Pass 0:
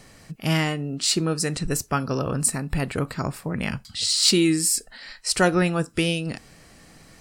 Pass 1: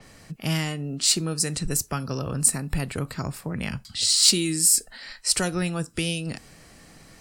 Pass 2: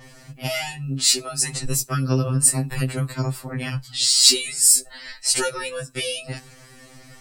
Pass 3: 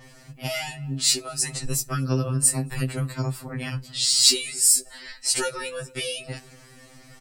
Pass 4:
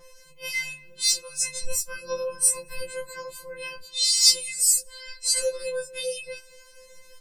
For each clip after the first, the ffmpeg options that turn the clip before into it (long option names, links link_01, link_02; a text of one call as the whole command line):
ffmpeg -i in.wav -filter_complex "[0:a]acrossover=split=160|3000[link_01][link_02][link_03];[link_02]acompressor=threshold=-33dB:ratio=2[link_04];[link_01][link_04][link_03]amix=inputs=3:normalize=0,adynamicequalizer=threshold=0.02:dfrequency=6100:dqfactor=0.7:tfrequency=6100:tqfactor=0.7:attack=5:release=100:ratio=0.375:range=2.5:mode=boostabove:tftype=highshelf" out.wav
ffmpeg -i in.wav -af "afftfilt=real='re*2.45*eq(mod(b,6),0)':imag='im*2.45*eq(mod(b,6),0)':win_size=2048:overlap=0.75,volume=5.5dB" out.wav
ffmpeg -i in.wav -filter_complex "[0:a]asplit=2[link_01][link_02];[link_02]adelay=231,lowpass=frequency=810:poles=1,volume=-17dB,asplit=2[link_03][link_04];[link_04]adelay=231,lowpass=frequency=810:poles=1,volume=0.47,asplit=2[link_05][link_06];[link_06]adelay=231,lowpass=frequency=810:poles=1,volume=0.47,asplit=2[link_07][link_08];[link_08]adelay=231,lowpass=frequency=810:poles=1,volume=0.47[link_09];[link_01][link_03][link_05][link_07][link_09]amix=inputs=5:normalize=0,volume=-3dB" out.wav
ffmpeg -i in.wav -af "afftfilt=real='re*2.83*eq(mod(b,8),0)':imag='im*2.83*eq(mod(b,8),0)':win_size=2048:overlap=0.75" out.wav